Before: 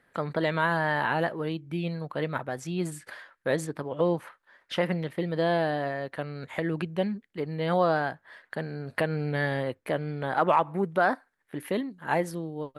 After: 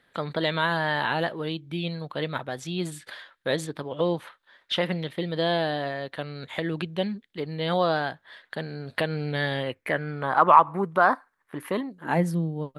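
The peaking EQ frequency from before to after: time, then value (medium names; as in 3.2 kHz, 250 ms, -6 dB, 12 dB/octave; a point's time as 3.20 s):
peaking EQ +12 dB 0.63 oct
9.52 s 3.6 kHz
10.26 s 1.1 kHz
11.78 s 1.1 kHz
12.19 s 170 Hz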